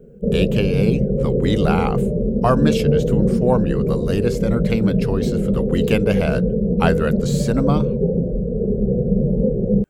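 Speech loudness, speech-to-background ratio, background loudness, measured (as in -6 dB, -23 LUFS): -23.0 LUFS, -3.0 dB, -20.0 LUFS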